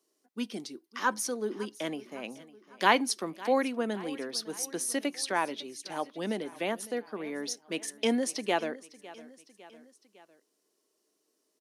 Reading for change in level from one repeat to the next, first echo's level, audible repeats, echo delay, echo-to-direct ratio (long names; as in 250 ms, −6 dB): −5.0 dB, −19.0 dB, 3, 555 ms, −17.5 dB